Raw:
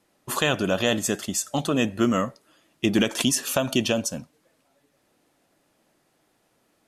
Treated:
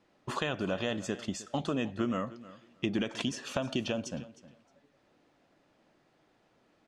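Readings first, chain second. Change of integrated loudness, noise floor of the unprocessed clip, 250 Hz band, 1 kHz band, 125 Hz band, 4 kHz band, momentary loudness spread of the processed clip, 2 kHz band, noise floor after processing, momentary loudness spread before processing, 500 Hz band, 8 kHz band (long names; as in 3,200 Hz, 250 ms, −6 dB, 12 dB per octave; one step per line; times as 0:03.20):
−10.0 dB, −68 dBFS, −9.0 dB, −8.5 dB, −8.0 dB, −11.5 dB, 9 LU, −10.5 dB, −69 dBFS, 6 LU, −9.5 dB, −18.0 dB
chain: downward compressor 2.5 to 1, threshold −32 dBFS, peak gain reduction 11 dB
high-frequency loss of the air 130 metres
on a send: repeating echo 310 ms, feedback 18%, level −17.5 dB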